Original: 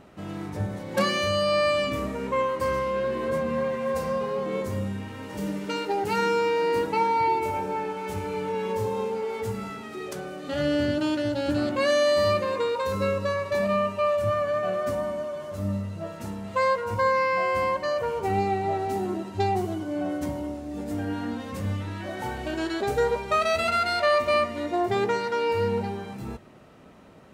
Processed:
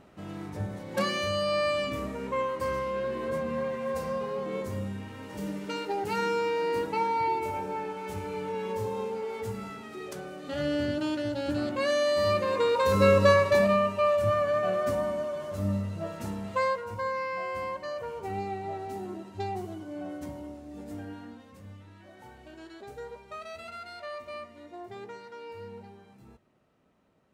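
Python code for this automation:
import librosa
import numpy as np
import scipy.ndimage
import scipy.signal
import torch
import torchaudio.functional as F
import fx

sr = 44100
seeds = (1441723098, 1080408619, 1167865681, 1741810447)

y = fx.gain(x, sr, db=fx.line((12.14, -4.5), (13.3, 8.0), (13.8, -0.5), (16.43, -0.5), (16.94, -9.0), (20.95, -9.0), (21.55, -18.0)))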